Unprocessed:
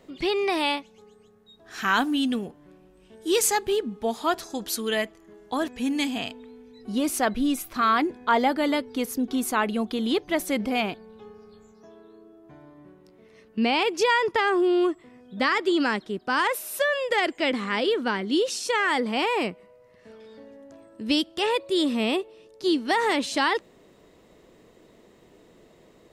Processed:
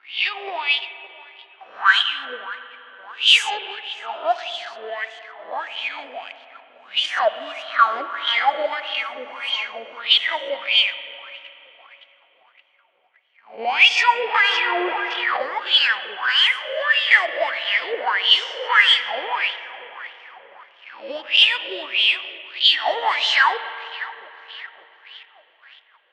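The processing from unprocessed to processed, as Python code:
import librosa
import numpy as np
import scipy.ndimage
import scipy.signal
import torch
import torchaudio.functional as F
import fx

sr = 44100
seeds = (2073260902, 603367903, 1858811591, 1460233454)

p1 = fx.spec_swells(x, sr, rise_s=0.58)
p2 = fx.level_steps(p1, sr, step_db=22)
p3 = p1 + (p2 * librosa.db_to_amplitude(-3.0))
p4 = fx.weighting(p3, sr, curve='ITU-R 468')
p5 = fx.spec_repair(p4, sr, seeds[0], start_s=9.07, length_s=0.9, low_hz=1100.0, high_hz=7600.0, source='before')
p6 = p5 + fx.echo_thinned(p5, sr, ms=565, feedback_pct=76, hz=280.0, wet_db=-17.5, dry=0)
p7 = fx.leveller(p6, sr, passes=3)
p8 = fx.wah_lfo(p7, sr, hz=1.6, low_hz=510.0, high_hz=3200.0, q=8.1)
p9 = fx.rev_spring(p8, sr, rt60_s=3.5, pass_ms=(39, 48, 52), chirp_ms=35, drr_db=11.5)
p10 = fx.env_lowpass(p9, sr, base_hz=2200.0, full_db=-8.5)
p11 = fx.env_flatten(p10, sr, amount_pct=50, at=(14.34, 15.37))
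y = p11 * librosa.db_to_amplitude(-1.0)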